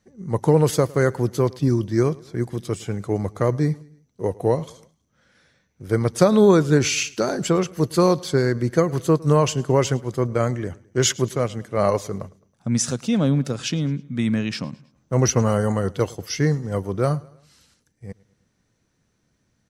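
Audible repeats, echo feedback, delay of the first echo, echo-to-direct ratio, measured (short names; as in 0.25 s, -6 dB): 2, 47%, 0.107 s, -22.0 dB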